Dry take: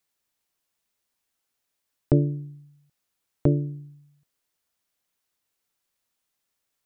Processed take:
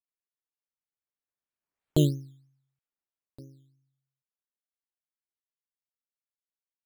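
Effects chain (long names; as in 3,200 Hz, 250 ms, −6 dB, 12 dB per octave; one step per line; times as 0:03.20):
source passing by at 0:02.04, 25 m/s, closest 1.4 metres
sample-and-hold swept by an LFO 10×, swing 60% 3.1 Hz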